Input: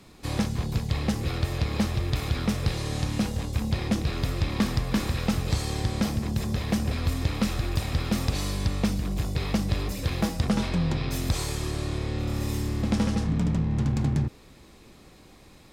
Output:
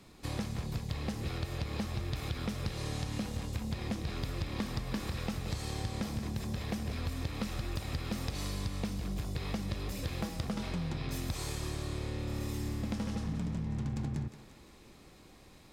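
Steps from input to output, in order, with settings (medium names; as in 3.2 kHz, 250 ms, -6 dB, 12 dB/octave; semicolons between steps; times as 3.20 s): compression, threshold -27 dBFS, peak gain reduction 8 dB; on a send: thinning echo 176 ms, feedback 58%, level -9.5 dB; on the sum: trim -5 dB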